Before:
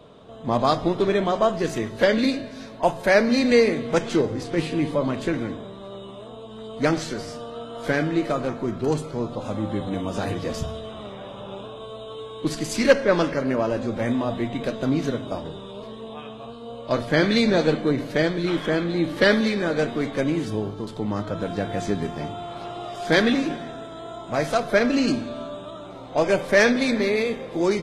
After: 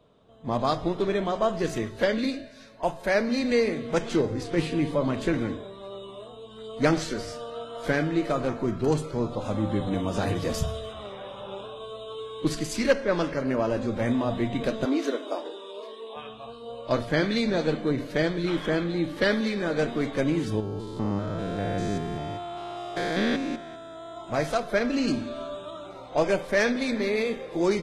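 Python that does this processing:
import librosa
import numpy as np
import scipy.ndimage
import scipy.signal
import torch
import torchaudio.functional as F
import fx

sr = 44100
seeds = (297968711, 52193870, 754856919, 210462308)

y = fx.high_shelf(x, sr, hz=10000.0, db=12.0, at=(10.35, 10.93))
y = fx.steep_highpass(y, sr, hz=270.0, slope=36, at=(14.85, 16.16))
y = fx.spec_steps(y, sr, hold_ms=200, at=(20.6, 24.17))
y = fx.noise_reduce_blind(y, sr, reduce_db=8)
y = fx.low_shelf(y, sr, hz=77.0, db=5.5)
y = fx.rider(y, sr, range_db=3, speed_s=0.5)
y = F.gain(torch.from_numpy(y), -3.5).numpy()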